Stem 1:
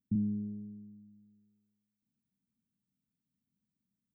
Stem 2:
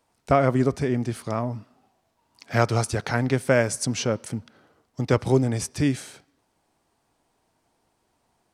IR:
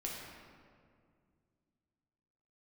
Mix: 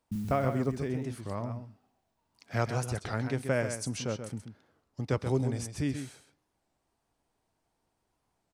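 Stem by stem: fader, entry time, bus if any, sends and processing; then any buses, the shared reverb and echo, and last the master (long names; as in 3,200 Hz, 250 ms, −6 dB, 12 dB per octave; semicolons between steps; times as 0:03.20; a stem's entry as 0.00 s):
−5.0 dB, 0.00 s, no send, echo send −4 dB, noise that follows the level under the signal 22 dB
−10.0 dB, 0.00 s, no send, echo send −8.5 dB, no processing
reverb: not used
echo: single-tap delay 132 ms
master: low-shelf EQ 75 Hz +8.5 dB; wow of a warped record 33 1/3 rpm, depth 160 cents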